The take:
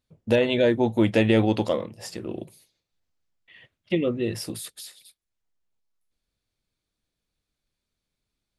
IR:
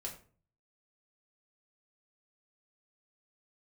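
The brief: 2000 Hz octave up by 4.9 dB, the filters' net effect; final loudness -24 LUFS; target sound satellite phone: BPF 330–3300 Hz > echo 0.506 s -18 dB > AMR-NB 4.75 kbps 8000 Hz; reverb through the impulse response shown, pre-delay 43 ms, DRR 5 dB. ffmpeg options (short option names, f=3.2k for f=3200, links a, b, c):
-filter_complex "[0:a]equalizer=f=2k:t=o:g=7,asplit=2[a][b];[1:a]atrim=start_sample=2205,adelay=43[c];[b][c]afir=irnorm=-1:irlink=0,volume=-3.5dB[d];[a][d]amix=inputs=2:normalize=0,highpass=330,lowpass=3.3k,aecho=1:1:506:0.126,volume=2dB" -ar 8000 -c:a libopencore_amrnb -b:a 4750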